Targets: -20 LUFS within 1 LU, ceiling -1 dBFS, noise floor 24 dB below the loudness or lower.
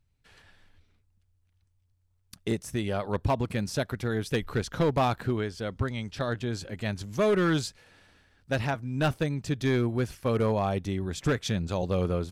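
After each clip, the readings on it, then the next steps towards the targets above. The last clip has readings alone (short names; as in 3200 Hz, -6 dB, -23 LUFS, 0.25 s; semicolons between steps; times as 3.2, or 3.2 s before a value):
clipped 1.0%; flat tops at -19.0 dBFS; loudness -29.5 LUFS; peak -19.0 dBFS; loudness target -20.0 LUFS
-> clip repair -19 dBFS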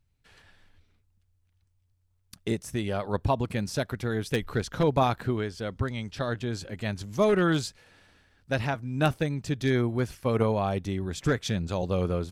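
clipped 0.0%; loudness -28.5 LUFS; peak -10.0 dBFS; loudness target -20.0 LUFS
-> gain +8.5 dB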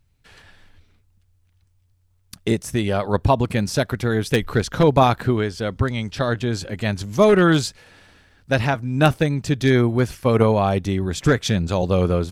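loudness -20.0 LUFS; peak -1.5 dBFS; noise floor -62 dBFS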